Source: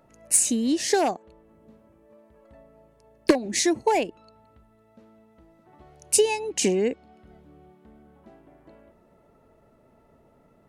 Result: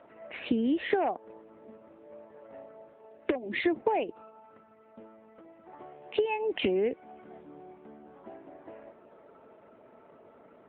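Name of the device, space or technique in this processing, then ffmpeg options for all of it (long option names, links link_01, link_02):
voicemail: -af "highpass=300,lowpass=2700,acompressor=threshold=-30dB:ratio=10,volume=7dB" -ar 8000 -c:a libopencore_amrnb -b:a 7950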